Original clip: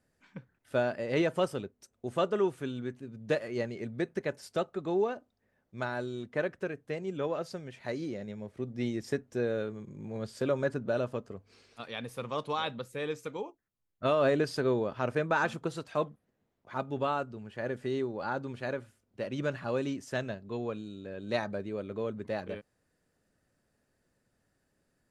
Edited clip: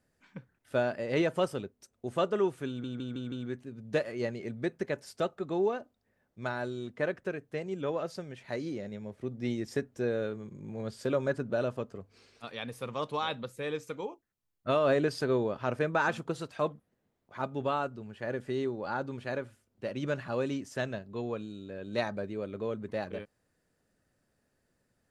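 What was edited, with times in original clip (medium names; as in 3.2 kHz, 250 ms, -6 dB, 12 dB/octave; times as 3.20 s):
2.68 s: stutter 0.16 s, 5 plays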